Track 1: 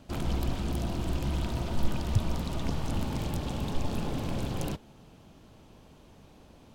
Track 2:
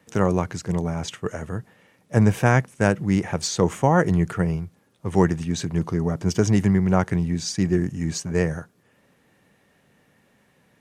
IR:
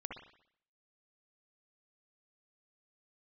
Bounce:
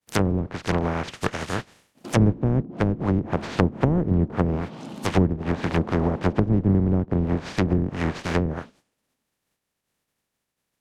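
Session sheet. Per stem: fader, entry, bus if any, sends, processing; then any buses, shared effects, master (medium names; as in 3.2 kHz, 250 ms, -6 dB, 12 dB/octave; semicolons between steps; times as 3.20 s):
+0.5 dB, 1.95 s, send -7 dB, echo send -11.5 dB, high-pass 180 Hz 24 dB/octave; compression, threshold -40 dBFS, peak gain reduction 10.5 dB
+1.5 dB, 0.00 s, no send, no echo send, spectral contrast reduction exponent 0.27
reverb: on, RT60 0.65 s, pre-delay 57 ms
echo: delay 557 ms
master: expander -46 dBFS; low-pass that closes with the level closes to 310 Hz, closed at -15.5 dBFS; bass shelf 450 Hz +5.5 dB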